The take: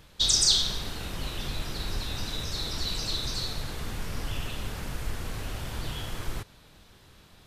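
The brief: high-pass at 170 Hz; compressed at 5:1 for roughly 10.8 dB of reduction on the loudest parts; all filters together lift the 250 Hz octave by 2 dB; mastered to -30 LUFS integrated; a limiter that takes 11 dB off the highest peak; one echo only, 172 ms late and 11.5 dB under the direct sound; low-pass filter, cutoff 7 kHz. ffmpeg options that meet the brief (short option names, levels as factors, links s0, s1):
-af "highpass=170,lowpass=7000,equalizer=f=250:t=o:g=4.5,acompressor=threshold=0.0282:ratio=5,alimiter=level_in=2:limit=0.0631:level=0:latency=1,volume=0.501,aecho=1:1:172:0.266,volume=2.51"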